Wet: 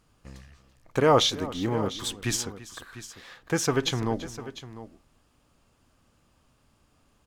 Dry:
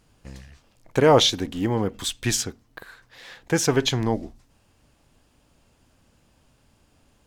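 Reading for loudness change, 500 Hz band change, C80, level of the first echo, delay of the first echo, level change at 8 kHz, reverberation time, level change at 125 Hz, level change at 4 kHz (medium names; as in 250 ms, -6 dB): -4.5 dB, -4.0 dB, no reverb, -17.5 dB, 336 ms, -4.5 dB, no reverb, -4.5 dB, -4.0 dB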